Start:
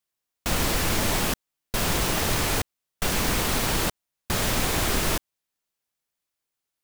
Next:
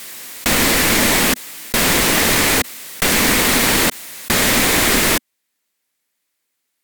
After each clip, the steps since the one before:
graphic EQ with 10 bands 250 Hz +11 dB, 500 Hz +6 dB, 1,000 Hz +4 dB, 2,000 Hz +12 dB, 4,000 Hz +6 dB, 8,000 Hz +6 dB, 16,000 Hz +12 dB
background raised ahead of every attack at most 27 dB per second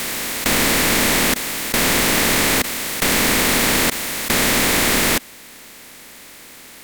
compressor on every frequency bin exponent 0.4
level −6 dB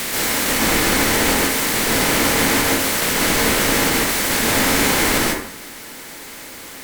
brickwall limiter −13 dBFS, peak gain reduction 9.5 dB
dense smooth reverb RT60 0.62 s, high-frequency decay 0.55×, pre-delay 120 ms, DRR −5 dB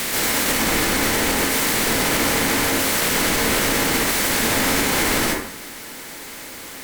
brickwall limiter −9.5 dBFS, peak gain reduction 5 dB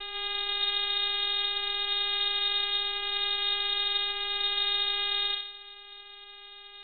channel vocoder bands 4, square 206 Hz
voice inversion scrambler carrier 3,900 Hz
high-shelf EQ 2,600 Hz −10.5 dB
level −2 dB

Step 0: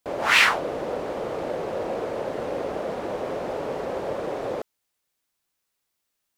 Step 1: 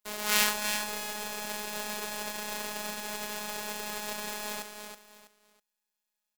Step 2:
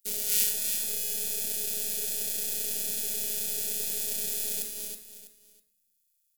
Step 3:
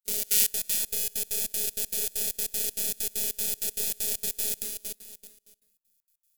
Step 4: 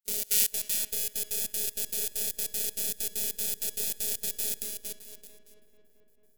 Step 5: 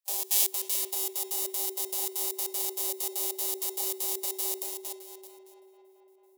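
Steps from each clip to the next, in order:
spectral envelope flattened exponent 0.3; phases set to zero 210 Hz; on a send: repeating echo 325 ms, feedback 28%, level −7 dB; on the sum: level −6 dB
drawn EQ curve 430 Hz 0 dB, 960 Hz −22 dB, 2,800 Hz −3 dB, 11,000 Hz +12 dB; in parallel at +1 dB: compressor whose output falls as the input rises −33 dBFS; on the sum: rectangular room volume 150 cubic metres, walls mixed, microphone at 0.36 metres; level −7 dB
floating-point word with a short mantissa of 4 bits; gate pattern ".xx.xx.x" 195 BPM −24 dB; level +3 dB
feedback echo with a low-pass in the loop 222 ms, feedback 79%, low-pass 3,300 Hz, level −15.5 dB; level −2 dB
frequency shifter +380 Hz

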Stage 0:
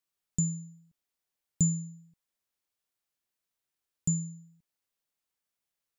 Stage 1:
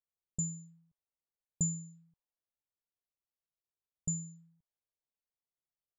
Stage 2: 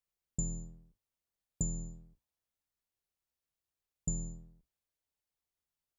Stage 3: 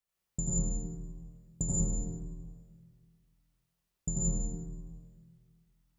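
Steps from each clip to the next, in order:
low-pass that shuts in the quiet parts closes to 490 Hz, open at −29.5 dBFS; octave-band graphic EQ 250/1,000/4,000 Hz −10/+4/+4 dB; level −4 dB
sub-octave generator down 2 octaves, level +3 dB; downward compressor 6 to 1, threshold −33 dBFS, peak gain reduction 9 dB; level +2.5 dB
convolution reverb RT60 1.7 s, pre-delay 75 ms, DRR −7.5 dB

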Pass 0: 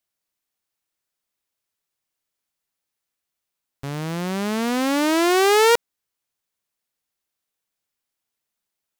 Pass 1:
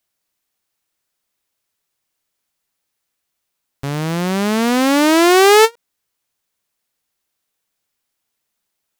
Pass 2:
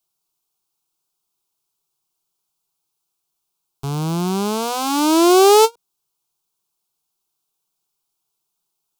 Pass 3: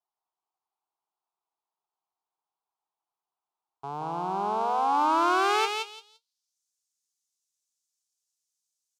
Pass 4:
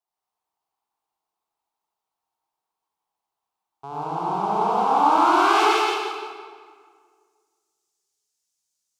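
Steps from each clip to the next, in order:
every ending faded ahead of time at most 560 dB per second; level +7 dB
phaser with its sweep stopped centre 370 Hz, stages 8
on a send: repeating echo 171 ms, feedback 19%, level −5 dB; on the sum: band-pass filter sweep 850 Hz → 6,500 Hz, 0:04.90–0:06.61
convolution reverb RT60 1.9 s, pre-delay 63 ms, DRR −5 dB

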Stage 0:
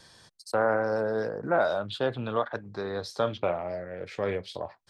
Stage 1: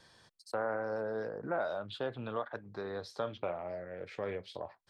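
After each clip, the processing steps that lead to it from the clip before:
bass and treble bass −2 dB, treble −6 dB
downward compressor 1.5 to 1, threshold −33 dBFS, peak gain reduction 5 dB
level −5 dB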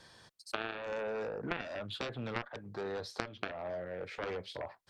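harmonic generator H 3 −7 dB, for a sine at −21.5 dBFS
downward compressor 6 to 1, threshold −46 dBFS, peak gain reduction 12 dB
level +13 dB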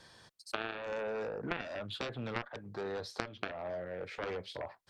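no processing that can be heard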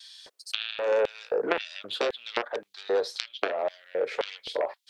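pitch vibrato 0.54 Hz 9.2 cents
auto-filter high-pass square 1.9 Hz 450–3,400 Hz
level +8.5 dB

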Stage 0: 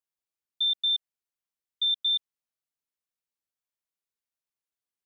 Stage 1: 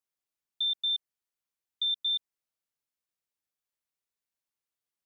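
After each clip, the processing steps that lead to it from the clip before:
dynamic equaliser 3,300 Hz, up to −4 dB, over −36 dBFS, Q 1.9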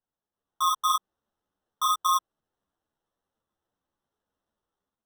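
automatic gain control gain up to 7.5 dB
decimation without filtering 19×
string-ensemble chorus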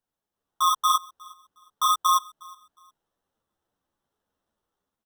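repeating echo 361 ms, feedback 26%, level −24 dB
level +3 dB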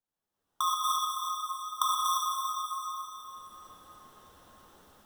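camcorder AGC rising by 22 dB per second
convolution reverb RT60 3.9 s, pre-delay 63 ms, DRR −1 dB
level −8.5 dB

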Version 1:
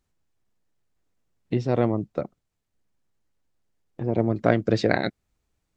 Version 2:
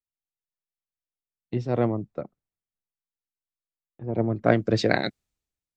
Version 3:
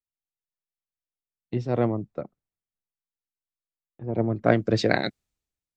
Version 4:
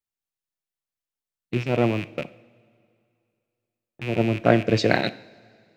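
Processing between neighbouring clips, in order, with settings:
multiband upward and downward expander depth 70%; level −2 dB
no processing that can be heard
loose part that buzzes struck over −37 dBFS, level −24 dBFS; coupled-rooms reverb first 0.58 s, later 2.5 s, from −16 dB, DRR 13.5 dB; level +2 dB

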